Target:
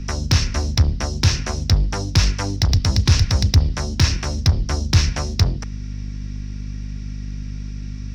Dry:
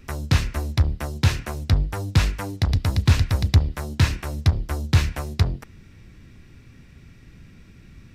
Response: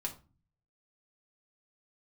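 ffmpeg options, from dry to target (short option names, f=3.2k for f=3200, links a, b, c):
-filter_complex "[0:a]lowpass=f=5.6k:t=q:w=5.5,acontrast=62,aeval=exprs='val(0)+0.0562*(sin(2*PI*50*n/s)+sin(2*PI*2*50*n/s)/2+sin(2*PI*3*50*n/s)/3+sin(2*PI*4*50*n/s)/4+sin(2*PI*5*50*n/s)/5)':c=same,acrossover=split=130[a][b];[b]acompressor=threshold=-15dB:ratio=6[c];[a][c]amix=inputs=2:normalize=0,volume=-2dB"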